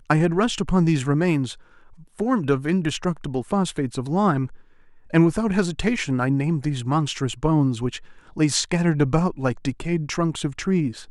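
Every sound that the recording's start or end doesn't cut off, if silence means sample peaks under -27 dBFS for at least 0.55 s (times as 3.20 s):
2.19–4.46 s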